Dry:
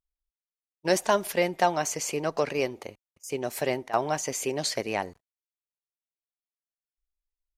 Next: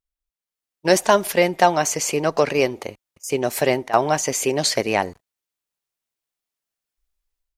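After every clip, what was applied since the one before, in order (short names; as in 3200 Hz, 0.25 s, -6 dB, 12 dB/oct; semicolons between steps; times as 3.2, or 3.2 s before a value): AGC gain up to 10 dB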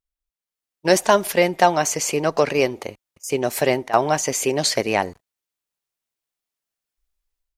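nothing audible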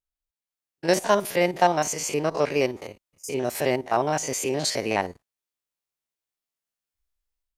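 stepped spectrum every 50 ms; gain -3 dB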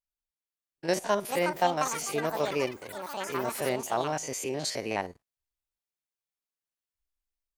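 echoes that change speed 0.73 s, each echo +7 st, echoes 3, each echo -6 dB; gain -6.5 dB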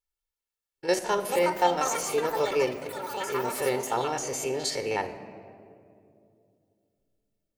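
reverb RT60 2.6 s, pre-delay 4 ms, DRR 9 dB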